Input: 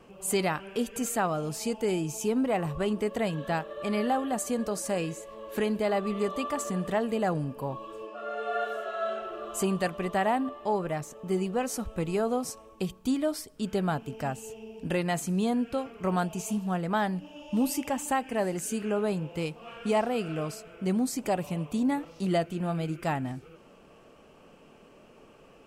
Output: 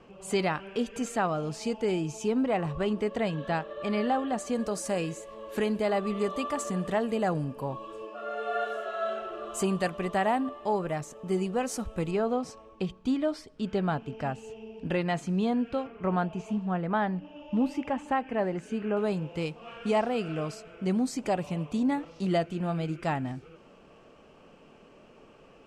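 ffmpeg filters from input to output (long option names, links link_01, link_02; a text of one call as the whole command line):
ffmpeg -i in.wav -af "asetnsamples=nb_out_samples=441:pad=0,asendcmd='4.55 lowpass f 9900;12.11 lowpass f 4100;15.87 lowpass f 2500;18.97 lowpass f 6700',lowpass=5500" out.wav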